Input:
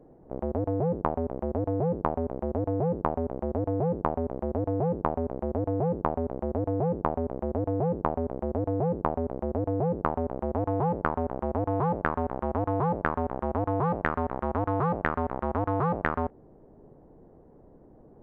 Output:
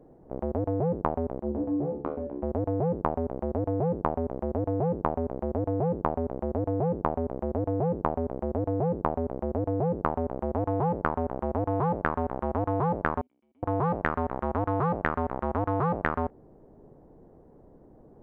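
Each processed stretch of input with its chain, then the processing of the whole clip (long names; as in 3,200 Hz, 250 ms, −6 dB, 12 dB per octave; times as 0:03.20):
0:01.40–0:02.43: parametric band 290 Hz +9.5 dB 1.1 octaves + tuned comb filter 72 Hz, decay 0.37 s, mix 90%
0:13.21–0:13.63: formant resonators in series i + first difference
whole clip: no processing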